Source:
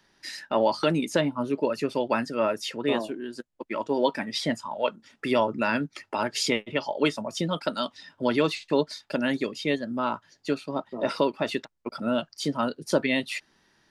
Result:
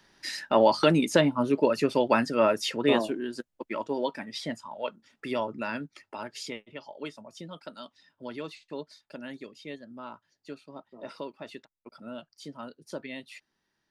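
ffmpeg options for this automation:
-af "volume=2.5dB,afade=t=out:st=3.17:d=0.92:silence=0.334965,afade=t=out:st=5.53:d=1.17:silence=0.421697"

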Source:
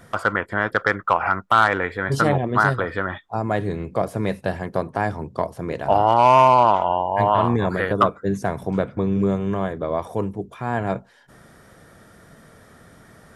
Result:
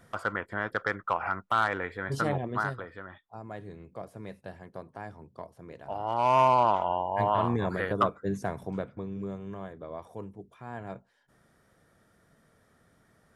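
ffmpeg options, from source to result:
-af "volume=0.5dB,afade=t=out:st=2.45:d=0.44:silence=0.375837,afade=t=in:st=5.98:d=0.44:silence=0.298538,afade=t=out:st=8.4:d=0.68:silence=0.398107"

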